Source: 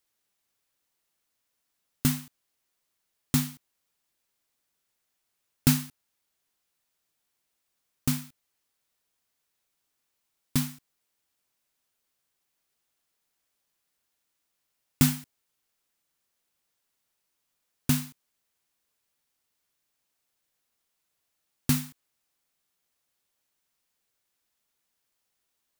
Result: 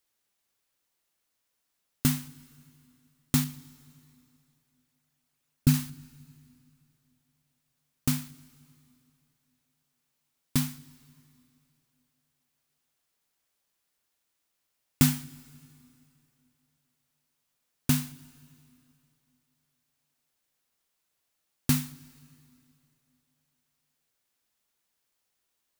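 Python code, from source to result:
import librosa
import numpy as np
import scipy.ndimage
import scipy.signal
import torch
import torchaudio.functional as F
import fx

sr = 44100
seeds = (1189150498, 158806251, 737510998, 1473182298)

y = fx.envelope_sharpen(x, sr, power=1.5, at=(3.44, 5.74))
y = fx.rev_plate(y, sr, seeds[0], rt60_s=2.8, hf_ratio=0.9, predelay_ms=0, drr_db=18.5)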